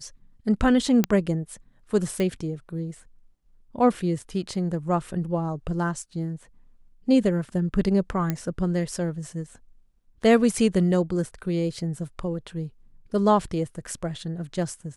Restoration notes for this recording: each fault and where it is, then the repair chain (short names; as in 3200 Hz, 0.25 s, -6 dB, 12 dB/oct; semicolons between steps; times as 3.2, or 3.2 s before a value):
1.04 pop -7 dBFS
2.2 pop -15 dBFS
8.3 pop -12 dBFS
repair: de-click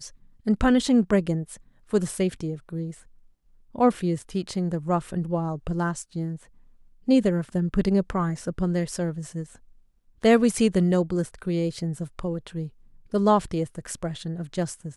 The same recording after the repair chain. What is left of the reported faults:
2.2 pop